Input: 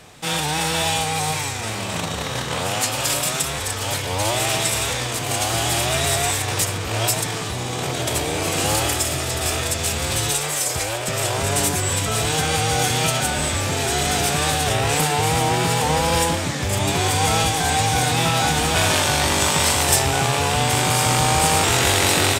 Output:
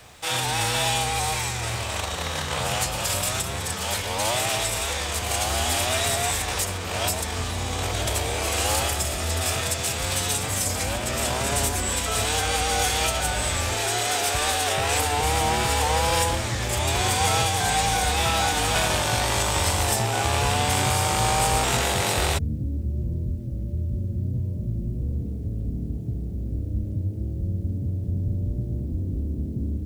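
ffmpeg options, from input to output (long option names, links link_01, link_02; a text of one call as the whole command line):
ffmpeg -i in.wav -filter_complex "[0:a]acrossover=split=350|960[link_01][link_02][link_03];[link_01]asetrate=33075,aresample=44100[link_04];[link_03]alimiter=limit=-12dB:level=0:latency=1:release=487[link_05];[link_04][link_02][link_05]amix=inputs=3:normalize=0,acrusher=bits=9:mix=0:aa=0.000001,volume=-2dB" out.wav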